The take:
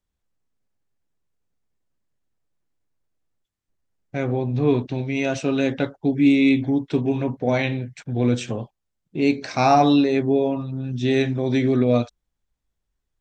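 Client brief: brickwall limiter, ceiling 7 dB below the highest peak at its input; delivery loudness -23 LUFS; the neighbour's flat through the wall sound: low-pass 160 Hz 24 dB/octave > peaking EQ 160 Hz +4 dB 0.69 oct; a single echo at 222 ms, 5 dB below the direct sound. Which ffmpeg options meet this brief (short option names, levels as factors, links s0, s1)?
-af "alimiter=limit=0.251:level=0:latency=1,lowpass=f=160:w=0.5412,lowpass=f=160:w=1.3066,equalizer=f=160:t=o:w=0.69:g=4,aecho=1:1:222:0.562,volume=2"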